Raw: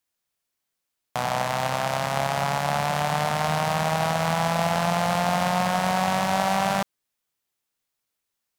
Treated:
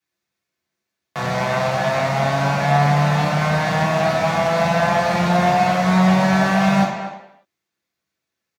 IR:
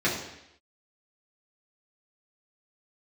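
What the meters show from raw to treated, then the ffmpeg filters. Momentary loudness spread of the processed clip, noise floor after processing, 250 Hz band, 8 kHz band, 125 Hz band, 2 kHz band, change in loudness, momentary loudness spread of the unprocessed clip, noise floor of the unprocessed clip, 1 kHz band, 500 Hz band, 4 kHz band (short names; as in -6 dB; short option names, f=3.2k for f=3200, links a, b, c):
6 LU, -82 dBFS, +10.5 dB, -1.0 dB, +9.5 dB, +6.5 dB, +6.5 dB, 3 LU, -82 dBFS, +4.5 dB, +7.0 dB, +2.0 dB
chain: -filter_complex "[0:a]asplit=2[a][b];[b]adelay=240,highpass=300,lowpass=3.4k,asoftclip=type=hard:threshold=-16.5dB,volume=-9dB[c];[a][c]amix=inputs=2:normalize=0[d];[1:a]atrim=start_sample=2205,afade=t=out:st=0.43:d=0.01,atrim=end_sample=19404[e];[d][e]afir=irnorm=-1:irlink=0,volume=-8dB"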